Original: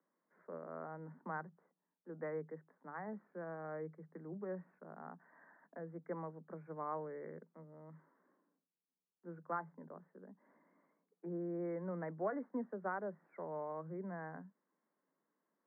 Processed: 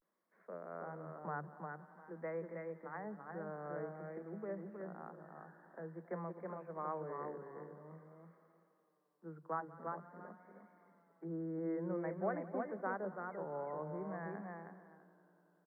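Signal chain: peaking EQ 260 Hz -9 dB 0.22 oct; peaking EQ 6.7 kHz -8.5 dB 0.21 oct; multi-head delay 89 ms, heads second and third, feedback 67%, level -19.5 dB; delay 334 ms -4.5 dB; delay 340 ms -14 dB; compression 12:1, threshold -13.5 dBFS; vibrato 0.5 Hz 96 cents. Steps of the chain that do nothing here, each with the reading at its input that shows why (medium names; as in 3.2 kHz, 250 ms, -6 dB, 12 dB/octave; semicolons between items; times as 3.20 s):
peaking EQ 6.7 kHz: input has nothing above 2 kHz; compression, threshold -13.5 dBFS: peak at its input -25.0 dBFS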